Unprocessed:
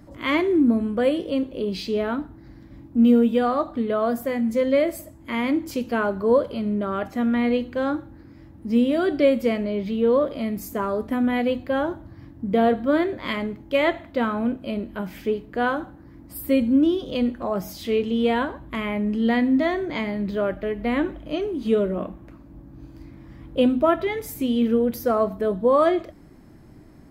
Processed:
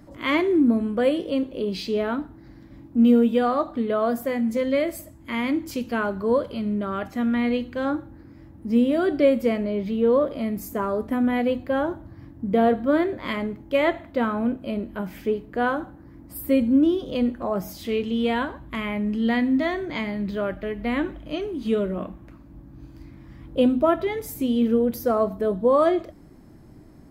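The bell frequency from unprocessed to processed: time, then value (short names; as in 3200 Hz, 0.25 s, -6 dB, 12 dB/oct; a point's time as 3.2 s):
bell -3.5 dB 1.7 oct
68 Hz
from 4.57 s 550 Hz
from 7.85 s 3800 Hz
from 17.89 s 490 Hz
from 23.48 s 2200 Hz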